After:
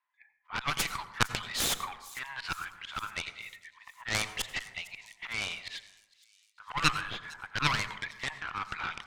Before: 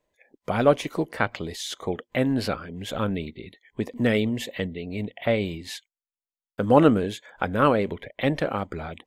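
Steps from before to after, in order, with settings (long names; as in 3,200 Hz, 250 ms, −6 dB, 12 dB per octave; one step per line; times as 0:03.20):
in parallel at −9 dB: hard clipping −20 dBFS, distortion −7 dB
on the sum: Butterworth high-pass 960 Hz 48 dB per octave
automatic gain control gain up to 5.5 dB
volume swells 161 ms
low-pass that shuts in the quiet parts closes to 1,800 Hz, open at −24.5 dBFS
harmonic generator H 3 −13 dB, 4 −14 dB, 7 −15 dB, 8 −29 dB, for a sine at −8.5 dBFS
0:07.01–0:07.55: high-frequency loss of the air 280 metres
on a send: delay with a high-pass on its return 456 ms, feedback 61%, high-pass 5,300 Hz, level −16 dB
on the sum: dense smooth reverb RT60 0.93 s, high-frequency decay 0.3×, pre-delay 75 ms, DRR 12.5 dB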